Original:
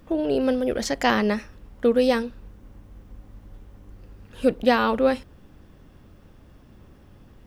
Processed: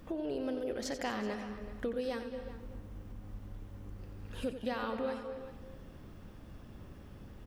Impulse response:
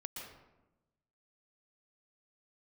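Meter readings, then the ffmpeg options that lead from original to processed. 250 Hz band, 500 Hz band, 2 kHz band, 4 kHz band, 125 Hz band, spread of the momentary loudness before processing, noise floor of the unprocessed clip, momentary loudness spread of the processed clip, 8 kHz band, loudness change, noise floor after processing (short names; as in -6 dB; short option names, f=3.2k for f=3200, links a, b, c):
-14.0 dB, -15.0 dB, -15.5 dB, -14.5 dB, -6.5 dB, 6 LU, -52 dBFS, 16 LU, n/a, -17.0 dB, -52 dBFS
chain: -filter_complex "[0:a]acompressor=threshold=-40dB:ratio=2.5,asplit=2[a][b];[b]adelay=379,volume=-13dB,highshelf=f=4k:g=-8.53[c];[a][c]amix=inputs=2:normalize=0,asplit=2[d][e];[1:a]atrim=start_sample=2205,adelay=89[f];[e][f]afir=irnorm=-1:irlink=0,volume=-5dB[g];[d][g]amix=inputs=2:normalize=0,volume=-1.5dB"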